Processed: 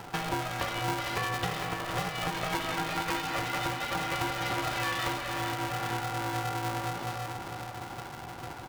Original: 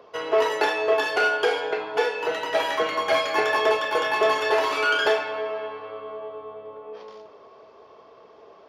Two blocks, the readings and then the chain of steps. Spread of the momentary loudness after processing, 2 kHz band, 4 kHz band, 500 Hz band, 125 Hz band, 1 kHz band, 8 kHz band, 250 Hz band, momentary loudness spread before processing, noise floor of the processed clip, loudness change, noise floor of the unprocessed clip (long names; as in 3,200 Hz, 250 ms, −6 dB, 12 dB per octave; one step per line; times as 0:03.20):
9 LU, −8.5 dB, −5.5 dB, −15.0 dB, can't be measured, −5.5 dB, +2.5 dB, +2.0 dB, 16 LU, −42 dBFS, −9.5 dB, −51 dBFS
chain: downward compressor 10 to 1, threshold −36 dBFS, peak gain reduction 20 dB
repeating echo 458 ms, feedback 60%, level −7.5 dB
ring modulator with a square carrier 310 Hz
level +6 dB